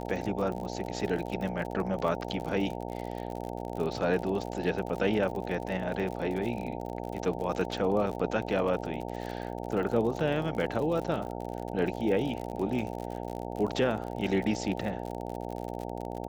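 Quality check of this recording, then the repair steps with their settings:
buzz 60 Hz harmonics 15 -37 dBFS
crackle 55/s -35 dBFS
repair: de-click; de-hum 60 Hz, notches 15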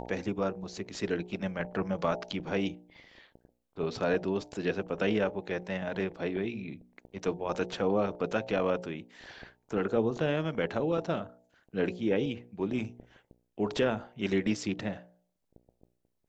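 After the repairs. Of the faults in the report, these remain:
none

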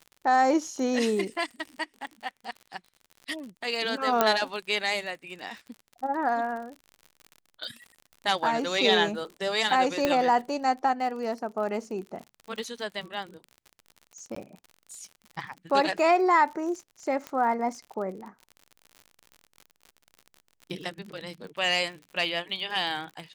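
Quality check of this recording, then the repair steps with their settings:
crackle 58/s -37 dBFS
4.21 pop -6 dBFS
10.05 pop -10 dBFS
14.35–14.36 gap 14 ms
17.27 pop -20 dBFS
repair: de-click; interpolate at 14.35, 14 ms

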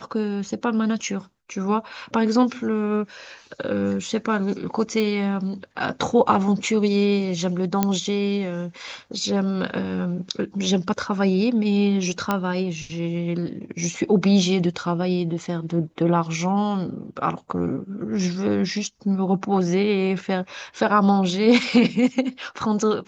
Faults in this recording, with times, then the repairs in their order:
5 pop -13 dBFS
7.83 pop -6 dBFS
12.31 pop -8 dBFS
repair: de-click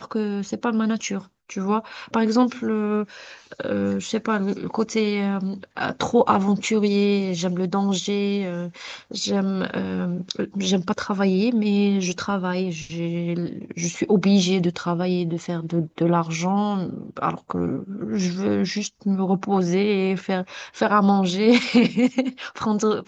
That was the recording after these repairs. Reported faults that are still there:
none

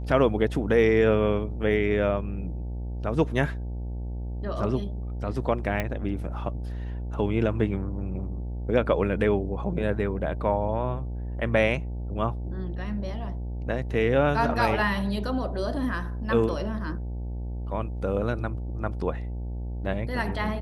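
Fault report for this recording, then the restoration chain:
buzz 60 Hz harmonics 15 -32 dBFS
5.8 pop -14 dBFS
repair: de-click; de-hum 60 Hz, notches 15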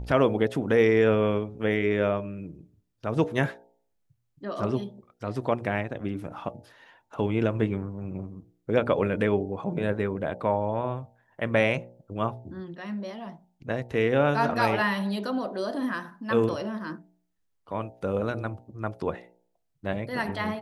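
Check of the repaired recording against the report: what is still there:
none

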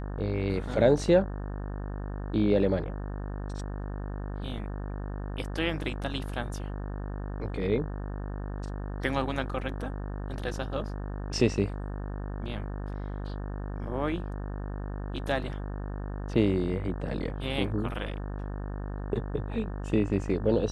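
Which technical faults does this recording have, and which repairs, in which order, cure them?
buzz 50 Hz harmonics 36 -35 dBFS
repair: de-hum 50 Hz, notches 36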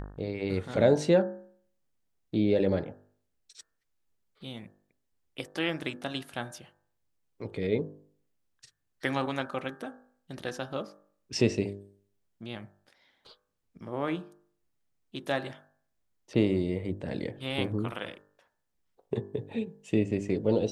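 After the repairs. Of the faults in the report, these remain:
none

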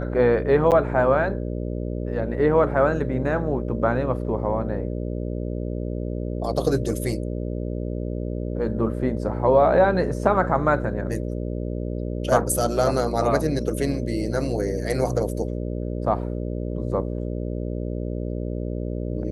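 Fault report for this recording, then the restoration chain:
buzz 60 Hz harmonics 10 -28 dBFS
0.71–0.72 gap 8 ms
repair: de-hum 60 Hz, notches 10; interpolate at 0.71, 8 ms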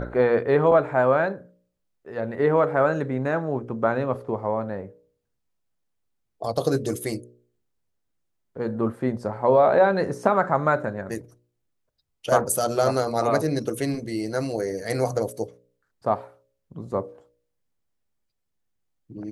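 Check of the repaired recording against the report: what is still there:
none

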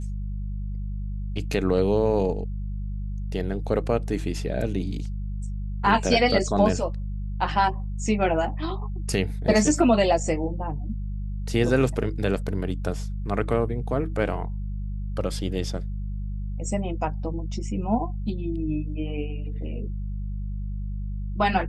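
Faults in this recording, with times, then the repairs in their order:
hum 50 Hz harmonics 4 -30 dBFS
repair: de-hum 50 Hz, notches 4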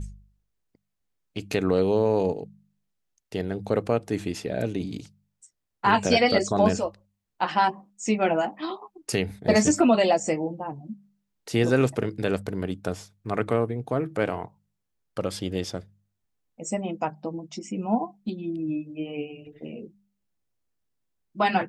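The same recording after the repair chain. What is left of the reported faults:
none

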